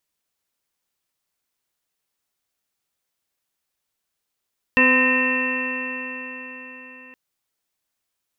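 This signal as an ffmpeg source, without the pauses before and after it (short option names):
-f lavfi -i "aevalsrc='0.112*pow(10,-3*t/4.65)*sin(2*PI*254.15*t)+0.075*pow(10,-3*t/4.65)*sin(2*PI*509.22*t)+0.0126*pow(10,-3*t/4.65)*sin(2*PI*766.1*t)+0.0708*pow(10,-3*t/4.65)*sin(2*PI*1025.71*t)+0.0178*pow(10,-3*t/4.65)*sin(2*PI*1288.91*t)+0.015*pow(10,-3*t/4.65)*sin(2*PI*1556.57*t)+0.15*pow(10,-3*t/4.65)*sin(2*PI*1829.53*t)+0.0158*pow(10,-3*t/4.65)*sin(2*PI*2108.59*t)+0.0316*pow(10,-3*t/4.65)*sin(2*PI*2394.52*t)+0.168*pow(10,-3*t/4.65)*sin(2*PI*2688.08*t)':d=2.37:s=44100"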